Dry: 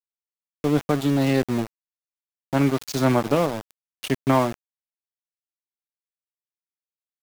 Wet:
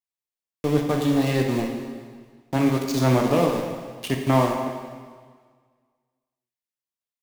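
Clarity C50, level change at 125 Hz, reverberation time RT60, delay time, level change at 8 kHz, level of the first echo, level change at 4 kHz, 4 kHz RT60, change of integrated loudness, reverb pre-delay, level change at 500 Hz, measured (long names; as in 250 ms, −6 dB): 4.0 dB, +1.5 dB, 1.7 s, no echo audible, +0.5 dB, no echo audible, +0.5 dB, 1.6 s, −0.5 dB, 5 ms, +0.5 dB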